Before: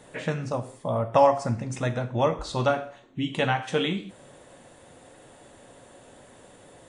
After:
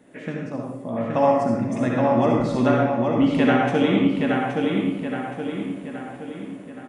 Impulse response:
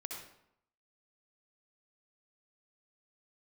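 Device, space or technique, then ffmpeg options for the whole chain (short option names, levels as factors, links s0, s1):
far laptop microphone: -filter_complex "[0:a]equalizer=f=125:t=o:w=1:g=-5,equalizer=f=250:t=o:w=1:g=9,equalizer=f=500:t=o:w=1:g=-4,equalizer=f=1000:t=o:w=1:g=-7,equalizer=f=4000:t=o:w=1:g=-9,equalizer=f=8000:t=o:w=1:g=-10[s0];[1:a]atrim=start_sample=2205[s1];[s0][s1]afir=irnorm=-1:irlink=0,highpass=f=130:p=1,dynaudnorm=f=520:g=5:m=2,asplit=2[s2][s3];[s3]adelay=822,lowpass=f=4700:p=1,volume=0.708,asplit=2[s4][s5];[s5]adelay=822,lowpass=f=4700:p=1,volume=0.5,asplit=2[s6][s7];[s7]adelay=822,lowpass=f=4700:p=1,volume=0.5,asplit=2[s8][s9];[s9]adelay=822,lowpass=f=4700:p=1,volume=0.5,asplit=2[s10][s11];[s11]adelay=822,lowpass=f=4700:p=1,volume=0.5,asplit=2[s12][s13];[s13]adelay=822,lowpass=f=4700:p=1,volume=0.5,asplit=2[s14][s15];[s15]adelay=822,lowpass=f=4700:p=1,volume=0.5[s16];[s2][s4][s6][s8][s10][s12][s14][s16]amix=inputs=8:normalize=0,volume=1.41"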